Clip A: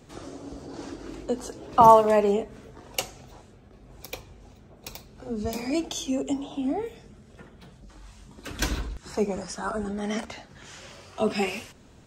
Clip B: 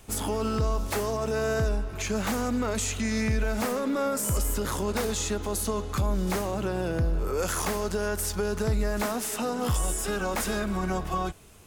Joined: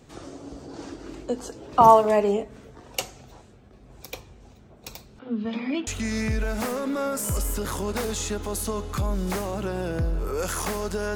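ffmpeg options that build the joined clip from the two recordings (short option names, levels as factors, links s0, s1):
-filter_complex "[0:a]asettb=1/sr,asplit=3[s0][s1][s2];[s0]atrim=end=5.194[s3];[s1]atrim=start=5.19:end=5.87,asetpts=PTS-STARTPTS,afade=t=in:d=0.004:c=qsin,afade=t=out:st=0.676:d=0.004:c=qsin,highpass=210,equalizer=f=230:t=q:w=4:g=9,equalizer=f=390:t=q:w=4:g=-7,equalizer=f=690:t=q:w=4:g=-7,equalizer=f=1200:t=q:w=4:g=4,equalizer=f=1800:t=q:w=4:g=4,equalizer=f=3300:t=q:w=4:g=10,lowpass=f=3400:w=0.5412,lowpass=f=3400:w=1.3066[s4];[s2]atrim=start=5.866[s5];[s3][s4]acrossfade=d=0.004:c1=hsin:c2=qsin[s6];[s6][s5]acrossfade=d=0.004:c1=qsin:c2=hsin,apad=whole_dur=11.15,atrim=end=11.15,atrim=end=5.872[s7];[1:a]atrim=start=2.868:end=8.15[s8];[s7][s8]acrossfade=d=0.004:c1=hsin:c2=hsin"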